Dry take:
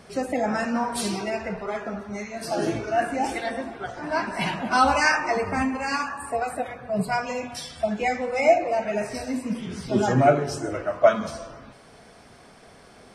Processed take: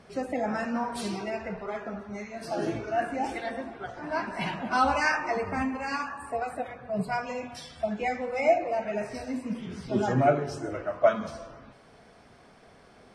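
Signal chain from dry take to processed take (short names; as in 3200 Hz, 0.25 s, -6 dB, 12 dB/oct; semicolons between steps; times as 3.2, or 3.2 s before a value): high shelf 6200 Hz -10 dB; gain -4.5 dB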